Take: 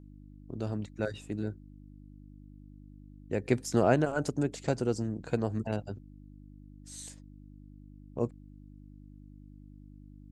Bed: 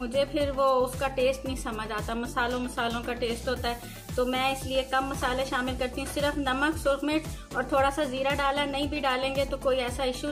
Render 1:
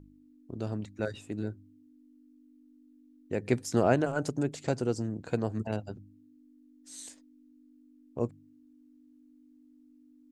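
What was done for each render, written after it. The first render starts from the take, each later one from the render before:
hum removal 50 Hz, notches 4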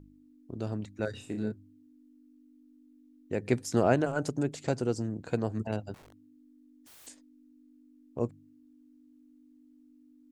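0:01.10–0:01.52: flutter between parallel walls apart 5.6 metres, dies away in 0.32 s
0:05.94–0:07.07: wrap-around overflow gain 50 dB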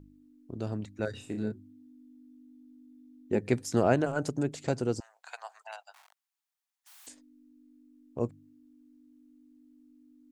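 0:01.53–0:03.39: hollow resonant body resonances 230/370/820/3,500 Hz, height 11 dB, ringing for 90 ms
0:05.00–0:07.07: Butterworth high-pass 730 Hz 48 dB per octave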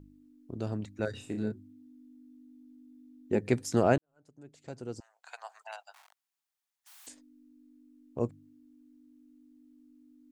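0:03.98–0:05.57: fade in quadratic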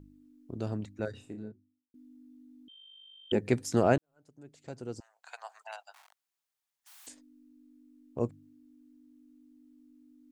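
0:00.66–0:01.94: fade out and dull
0:02.68–0:03.32: voice inversion scrambler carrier 3,400 Hz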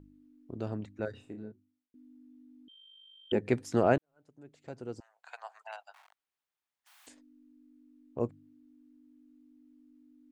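bass and treble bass −3 dB, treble −9 dB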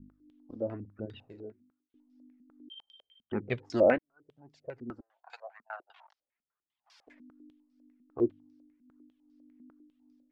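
flanger 0.89 Hz, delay 0.8 ms, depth 3.2 ms, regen −6%
low-pass on a step sequencer 10 Hz 230–5,100 Hz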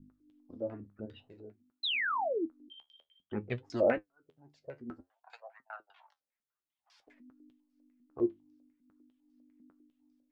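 0:01.83–0:02.46: sound drawn into the spectrogram fall 290–4,200 Hz −28 dBFS
flanger 0.54 Hz, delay 7 ms, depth 7.8 ms, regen +55%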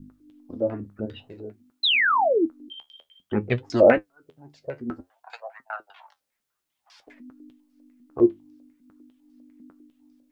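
level +12 dB

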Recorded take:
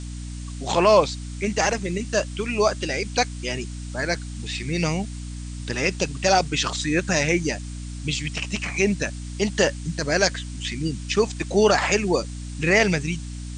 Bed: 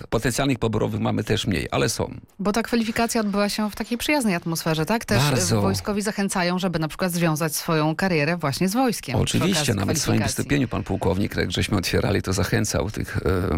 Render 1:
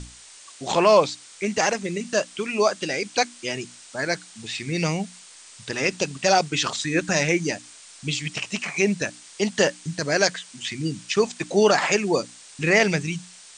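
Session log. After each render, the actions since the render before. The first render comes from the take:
mains-hum notches 60/120/180/240/300 Hz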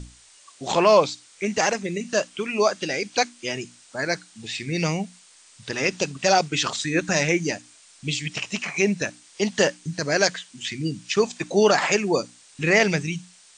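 noise reduction from a noise print 6 dB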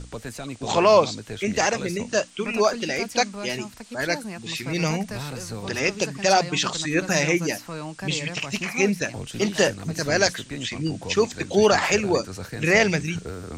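mix in bed −13 dB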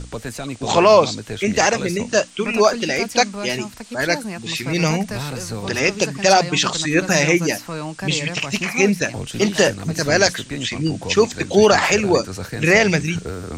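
level +5.5 dB
brickwall limiter −2 dBFS, peak gain reduction 3 dB

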